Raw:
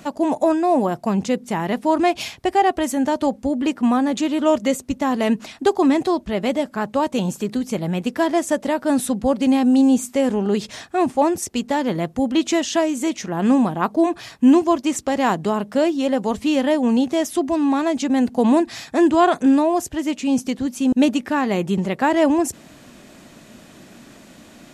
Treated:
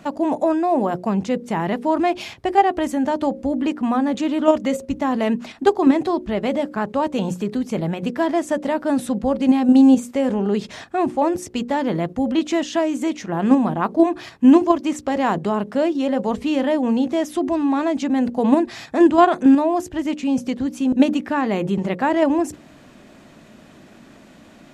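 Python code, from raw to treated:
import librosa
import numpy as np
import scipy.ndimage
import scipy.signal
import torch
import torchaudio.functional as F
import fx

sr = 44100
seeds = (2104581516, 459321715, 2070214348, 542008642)

p1 = fx.high_shelf(x, sr, hz=4500.0, db=-10.5)
p2 = fx.hum_notches(p1, sr, base_hz=60, count=9)
p3 = fx.level_steps(p2, sr, step_db=14)
p4 = p2 + (p3 * librosa.db_to_amplitude(2.5))
y = p4 * librosa.db_to_amplitude(-3.5)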